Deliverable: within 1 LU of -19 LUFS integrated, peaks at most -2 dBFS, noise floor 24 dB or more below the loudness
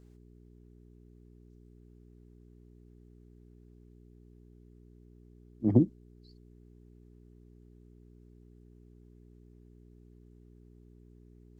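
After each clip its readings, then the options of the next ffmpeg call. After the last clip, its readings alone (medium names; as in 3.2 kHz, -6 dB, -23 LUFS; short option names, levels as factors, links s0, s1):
hum 60 Hz; highest harmonic 420 Hz; hum level -55 dBFS; loudness -28.0 LUFS; peak level -9.5 dBFS; loudness target -19.0 LUFS
-> -af "bandreject=f=60:t=h:w=4,bandreject=f=120:t=h:w=4,bandreject=f=180:t=h:w=4,bandreject=f=240:t=h:w=4,bandreject=f=300:t=h:w=4,bandreject=f=360:t=h:w=4,bandreject=f=420:t=h:w=4"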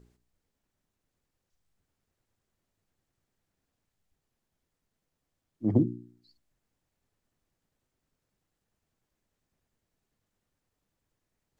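hum not found; loudness -28.5 LUFS; peak level -10.5 dBFS; loudness target -19.0 LUFS
-> -af "volume=2.99,alimiter=limit=0.794:level=0:latency=1"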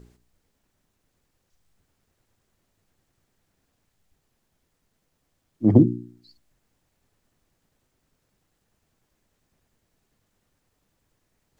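loudness -19.5 LUFS; peak level -2.0 dBFS; noise floor -75 dBFS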